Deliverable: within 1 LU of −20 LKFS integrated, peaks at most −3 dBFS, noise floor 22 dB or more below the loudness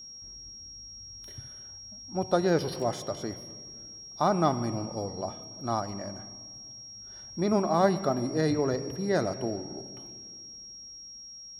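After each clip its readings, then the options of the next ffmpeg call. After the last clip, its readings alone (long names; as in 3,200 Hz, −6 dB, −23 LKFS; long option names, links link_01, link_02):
interfering tone 5,600 Hz; level of the tone −43 dBFS; integrated loudness −29.5 LKFS; sample peak −10.0 dBFS; target loudness −20.0 LKFS
→ -af "bandreject=frequency=5600:width=30"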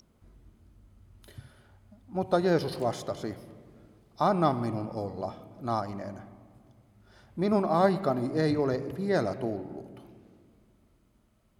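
interfering tone none found; integrated loudness −29.5 LKFS; sample peak −10.0 dBFS; target loudness −20.0 LKFS
→ -af "volume=9.5dB,alimiter=limit=-3dB:level=0:latency=1"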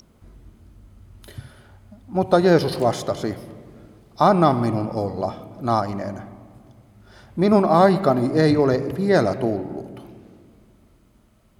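integrated loudness −20.0 LKFS; sample peak −3.0 dBFS; background noise floor −56 dBFS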